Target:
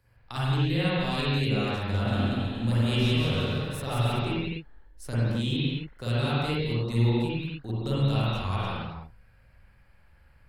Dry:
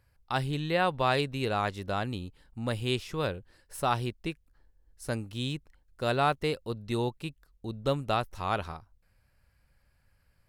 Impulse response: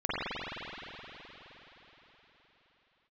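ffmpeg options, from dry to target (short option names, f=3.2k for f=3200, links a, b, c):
-filter_complex "[0:a]acrossover=split=230|3000[a][b][c];[b]acompressor=threshold=-41dB:ratio=6[d];[a][d][c]amix=inputs=3:normalize=0,asettb=1/sr,asplit=3[e][f][g];[e]atrim=end=1.764[h];[f]atrim=start=1.76:end=4.19,asetpts=PTS-STARTPTS,afade=t=in:d=0.004:c=qsin,afade=t=out:st=2.426:d=0.004:c=qsin,aecho=1:1:180|315|416.2|492.2|549.1:0.631|0.398|0.251|0.158|0.1,atrim=end_sample=107163[i];[g]atrim=start=4.186[j];[h][i]acrossfade=d=0.004:c1=hsin:c2=qsin[k];[k][j]acrossfade=d=0.004:c1=qsin:c2=hsin[l];[1:a]atrim=start_sample=2205,afade=t=out:st=0.35:d=0.01,atrim=end_sample=15876[m];[l][m]afir=irnorm=-1:irlink=0"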